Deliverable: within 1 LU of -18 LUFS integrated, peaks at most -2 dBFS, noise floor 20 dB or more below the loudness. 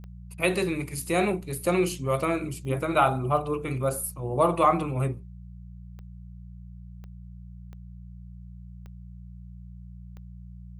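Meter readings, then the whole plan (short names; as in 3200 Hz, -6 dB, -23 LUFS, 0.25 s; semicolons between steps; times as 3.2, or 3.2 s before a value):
clicks 8; hum 60 Hz; harmonics up to 180 Hz; hum level -41 dBFS; loudness -26.5 LUFS; peak -8.5 dBFS; loudness target -18.0 LUFS
-> de-click; de-hum 60 Hz, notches 3; gain +8.5 dB; limiter -2 dBFS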